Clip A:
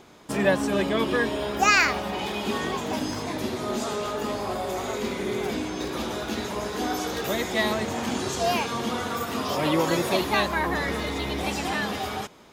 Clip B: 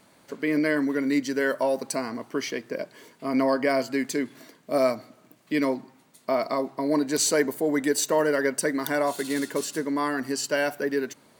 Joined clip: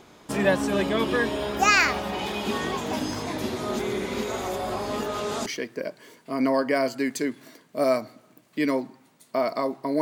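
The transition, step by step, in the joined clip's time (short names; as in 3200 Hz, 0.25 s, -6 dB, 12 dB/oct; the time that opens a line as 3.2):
clip A
3.79–5.46 reverse
5.46 switch to clip B from 2.4 s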